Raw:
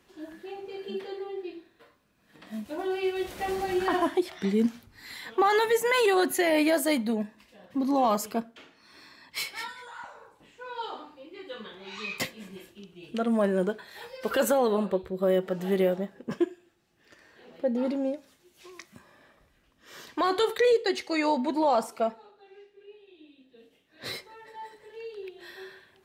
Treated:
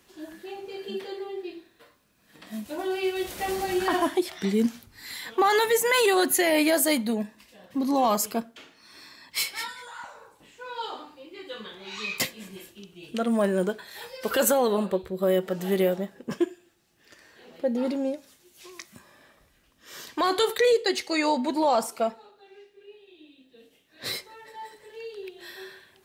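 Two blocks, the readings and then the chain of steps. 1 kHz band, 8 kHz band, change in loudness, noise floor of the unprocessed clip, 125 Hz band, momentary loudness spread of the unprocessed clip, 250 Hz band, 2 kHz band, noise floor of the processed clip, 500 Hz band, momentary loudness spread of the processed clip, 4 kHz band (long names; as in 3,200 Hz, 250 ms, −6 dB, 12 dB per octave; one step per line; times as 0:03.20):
+1.5 dB, +8.5 dB, +2.0 dB, −66 dBFS, +1.0 dB, 21 LU, +1.0 dB, +2.5 dB, −63 dBFS, +1.0 dB, 21 LU, +5.0 dB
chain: high-shelf EQ 4,300 Hz +9 dB
level +1 dB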